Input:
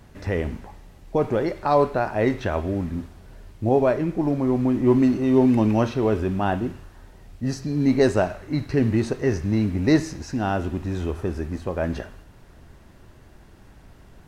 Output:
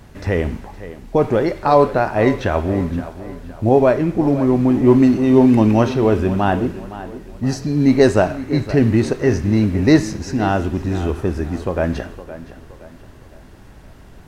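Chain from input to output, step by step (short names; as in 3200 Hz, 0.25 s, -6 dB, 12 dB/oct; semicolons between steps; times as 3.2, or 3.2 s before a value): tape echo 0.516 s, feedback 43%, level -13.5 dB, low-pass 3800 Hz; gain +6 dB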